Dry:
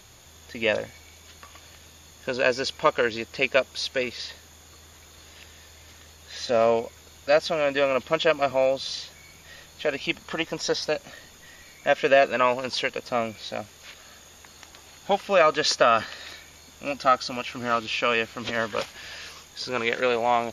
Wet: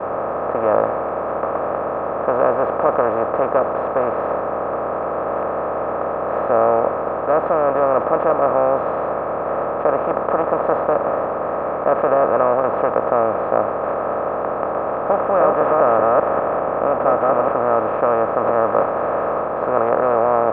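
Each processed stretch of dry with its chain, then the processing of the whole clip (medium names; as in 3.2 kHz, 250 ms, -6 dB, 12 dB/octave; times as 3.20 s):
15.21–17.52 s: chunks repeated in reverse 198 ms, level -1 dB + treble shelf 4.1 kHz -6.5 dB + careless resampling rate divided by 6×, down none, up filtered
whole clip: spectral levelling over time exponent 0.2; low-pass 1.2 kHz 24 dB/octave; expander -17 dBFS; trim -2 dB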